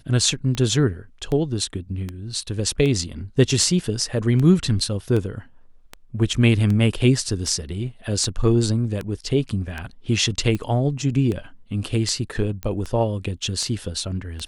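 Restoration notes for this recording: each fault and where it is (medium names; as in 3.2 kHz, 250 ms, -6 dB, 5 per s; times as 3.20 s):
tick 78 rpm -15 dBFS
12.63 s: pop -14 dBFS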